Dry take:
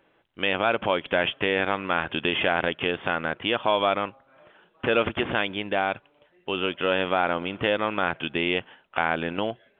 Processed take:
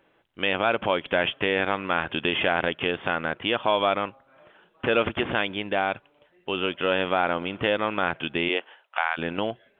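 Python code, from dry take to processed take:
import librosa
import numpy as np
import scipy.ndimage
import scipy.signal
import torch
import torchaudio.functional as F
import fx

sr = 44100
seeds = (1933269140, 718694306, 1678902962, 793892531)

y = fx.highpass(x, sr, hz=fx.line((8.48, 250.0), (9.17, 940.0)), slope=24, at=(8.48, 9.17), fade=0.02)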